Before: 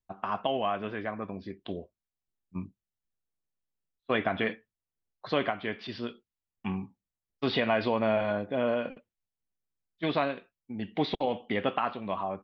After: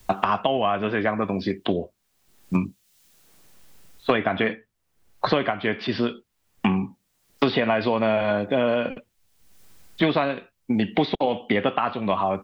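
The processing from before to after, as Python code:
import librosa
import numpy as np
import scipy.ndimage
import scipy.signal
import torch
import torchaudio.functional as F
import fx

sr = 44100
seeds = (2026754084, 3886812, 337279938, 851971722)

y = fx.band_squash(x, sr, depth_pct=100)
y = y * 10.0 ** (7.0 / 20.0)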